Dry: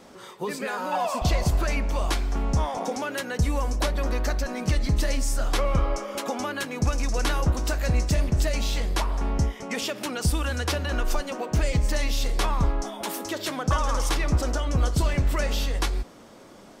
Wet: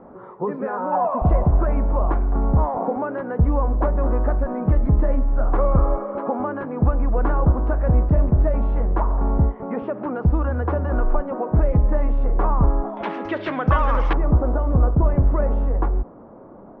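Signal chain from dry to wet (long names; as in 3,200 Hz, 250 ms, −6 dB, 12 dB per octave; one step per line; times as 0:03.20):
low-pass filter 1,200 Hz 24 dB per octave, from 0:12.97 2,400 Hz, from 0:14.13 1,100 Hz
level +6 dB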